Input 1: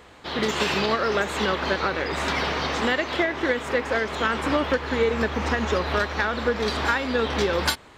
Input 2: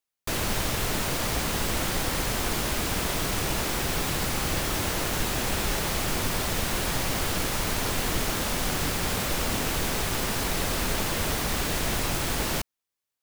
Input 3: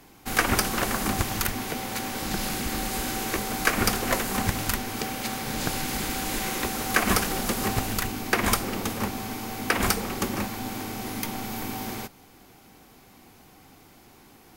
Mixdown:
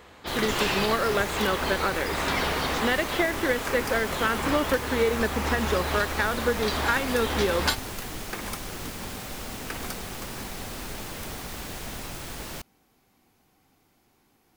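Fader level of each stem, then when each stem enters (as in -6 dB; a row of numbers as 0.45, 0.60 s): -1.5, -9.5, -13.0 dB; 0.00, 0.00, 0.00 s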